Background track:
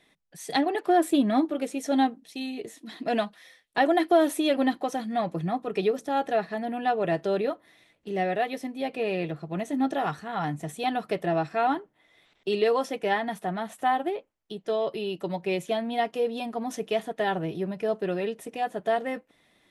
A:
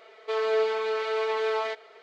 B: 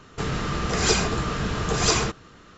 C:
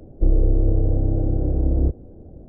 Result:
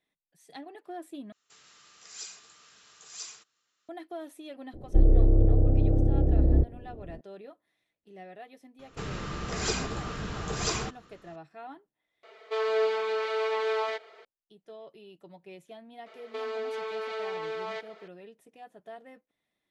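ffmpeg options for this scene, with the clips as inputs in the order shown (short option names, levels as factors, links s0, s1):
-filter_complex "[2:a]asplit=2[s0][s1];[1:a]asplit=2[s2][s3];[0:a]volume=0.106[s4];[s0]aderivative[s5];[s3]acompressor=threshold=0.0316:ratio=6:attack=3.2:release=140:knee=1:detection=peak[s6];[s4]asplit=3[s7][s8][s9];[s7]atrim=end=1.324[s10];[s5]atrim=end=2.57,asetpts=PTS-STARTPTS,volume=0.178[s11];[s8]atrim=start=3.886:end=12.234[s12];[s2]atrim=end=2.02,asetpts=PTS-STARTPTS,volume=0.841[s13];[s9]atrim=start=14.246[s14];[3:a]atrim=end=2.48,asetpts=PTS-STARTPTS,volume=0.75,afade=t=in:d=0.004:c=hsin,afade=t=out:st=2.476:d=0.004:c=hsin,adelay=208593S[s15];[s1]atrim=end=2.57,asetpts=PTS-STARTPTS,volume=0.355,afade=t=in:d=0.004:c=hsin,afade=t=out:st=2.566:d=0.004:c=hsin,adelay=8790[s16];[s6]atrim=end=2.02,asetpts=PTS-STARTPTS,volume=0.841,afade=t=in:d=0.004:c=hsin,afade=t=out:st=2.016:d=0.004:c=hsin,adelay=16060[s17];[s10][s11]acrossfade=d=0.004:c1=hsin:c2=hsin[s18];[s18][s12]acrossfade=d=0.004:c1=hsin:c2=hsin[s19];[s19][s13]acrossfade=d=0.004:c1=hsin:c2=hsin[s20];[s20][s14]acrossfade=d=0.004:c1=hsin:c2=hsin[s21];[s21][s15][s16][s17]amix=inputs=4:normalize=0"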